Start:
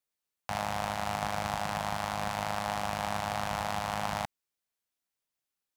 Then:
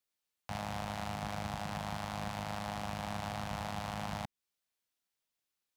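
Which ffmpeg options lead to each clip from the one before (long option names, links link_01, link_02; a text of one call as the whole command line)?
ffmpeg -i in.wav -filter_complex "[0:a]equalizer=frequency=3600:width_type=o:width=1.5:gain=3,acrossover=split=380[link_01][link_02];[link_02]alimiter=level_in=1dB:limit=-24dB:level=0:latency=1:release=217,volume=-1dB[link_03];[link_01][link_03]amix=inputs=2:normalize=0,volume=-1dB" out.wav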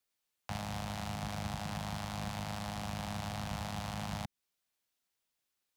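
ffmpeg -i in.wav -filter_complex "[0:a]acrossover=split=240|3000[link_01][link_02][link_03];[link_02]acompressor=threshold=-42dB:ratio=6[link_04];[link_01][link_04][link_03]amix=inputs=3:normalize=0,volume=2.5dB" out.wav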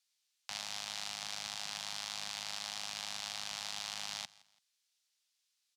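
ffmpeg -i in.wav -af "bandpass=frequency=5000:width_type=q:width=1.1:csg=0,aecho=1:1:167|334:0.0794|0.027,volume=9dB" out.wav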